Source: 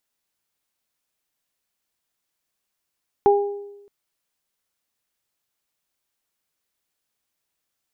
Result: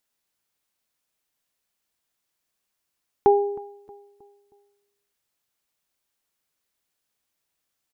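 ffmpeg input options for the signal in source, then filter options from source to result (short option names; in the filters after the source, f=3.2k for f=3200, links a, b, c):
-f lavfi -i "aevalsrc='0.266*pow(10,-3*t/0.99)*sin(2*PI*405*t)+0.211*pow(10,-3*t/0.56)*sin(2*PI*810*t)':d=0.62:s=44100"
-filter_complex "[0:a]asplit=2[a][b];[b]adelay=315,lowpass=f=1.2k:p=1,volume=-20dB,asplit=2[c][d];[d]adelay=315,lowpass=f=1.2k:p=1,volume=0.48,asplit=2[e][f];[f]adelay=315,lowpass=f=1.2k:p=1,volume=0.48,asplit=2[g][h];[h]adelay=315,lowpass=f=1.2k:p=1,volume=0.48[i];[a][c][e][g][i]amix=inputs=5:normalize=0"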